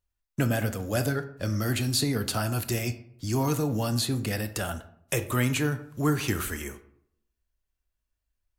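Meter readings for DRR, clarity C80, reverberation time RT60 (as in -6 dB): 10.0 dB, 16.5 dB, 0.70 s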